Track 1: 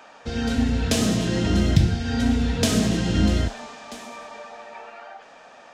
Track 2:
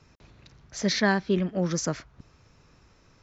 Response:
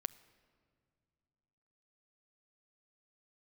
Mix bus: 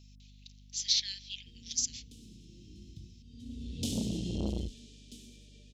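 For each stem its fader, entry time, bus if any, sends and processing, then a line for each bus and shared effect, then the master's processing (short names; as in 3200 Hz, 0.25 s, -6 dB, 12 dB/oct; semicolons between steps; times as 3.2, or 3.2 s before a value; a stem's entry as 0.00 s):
-10.0 dB, 1.20 s, no send, auto duck -22 dB, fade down 1.75 s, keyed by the second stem
0.0 dB, 0.00 s, send -6 dB, steep high-pass 1300 Hz 36 dB/oct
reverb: on, RT60 2.3 s, pre-delay 7 ms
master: elliptic band-stop 360–3100 Hz, stop band 60 dB; hum 50 Hz, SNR 18 dB; core saturation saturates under 560 Hz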